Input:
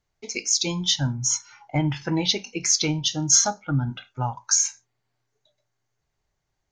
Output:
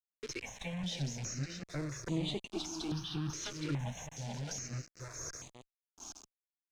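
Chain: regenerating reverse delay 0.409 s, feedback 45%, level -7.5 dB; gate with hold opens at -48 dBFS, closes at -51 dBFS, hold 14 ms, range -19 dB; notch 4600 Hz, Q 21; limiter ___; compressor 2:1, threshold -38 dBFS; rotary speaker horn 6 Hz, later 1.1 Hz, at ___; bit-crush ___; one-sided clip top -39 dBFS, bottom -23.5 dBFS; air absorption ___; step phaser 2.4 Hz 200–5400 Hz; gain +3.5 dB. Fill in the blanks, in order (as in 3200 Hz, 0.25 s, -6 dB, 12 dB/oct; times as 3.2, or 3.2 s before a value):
-15 dBFS, 3.57, 7-bit, 110 m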